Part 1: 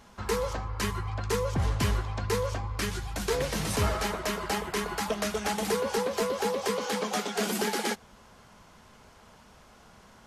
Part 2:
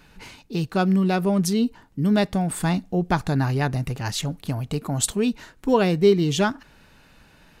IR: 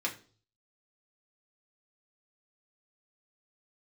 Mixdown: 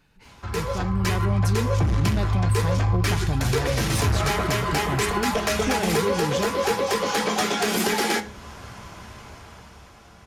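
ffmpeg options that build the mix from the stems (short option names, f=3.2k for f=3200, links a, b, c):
-filter_complex "[0:a]equalizer=f=70:w=2.9:g=13,asoftclip=type=tanh:threshold=-25dB,adelay=250,volume=-2dB,asplit=2[a][b];[b]volume=-3dB[c];[1:a]alimiter=limit=-15dB:level=0:latency=1,volume=-10.5dB[d];[2:a]atrim=start_sample=2205[e];[c][e]afir=irnorm=-1:irlink=0[f];[a][d][f]amix=inputs=3:normalize=0,equalizer=f=110:t=o:w=0.59:g=6,dynaudnorm=f=240:g=11:m=10.5dB,alimiter=limit=-13.5dB:level=0:latency=1:release=378"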